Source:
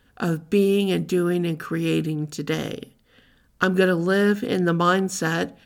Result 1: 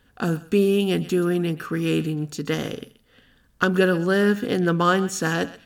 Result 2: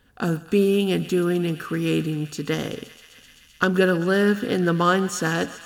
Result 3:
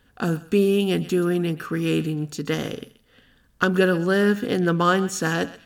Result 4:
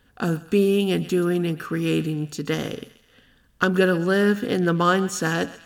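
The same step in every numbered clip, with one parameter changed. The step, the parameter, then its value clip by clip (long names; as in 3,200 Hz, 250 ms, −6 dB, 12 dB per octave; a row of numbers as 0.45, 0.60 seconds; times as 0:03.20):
feedback echo with a high-pass in the loop, feedback: 15, 91, 23, 52%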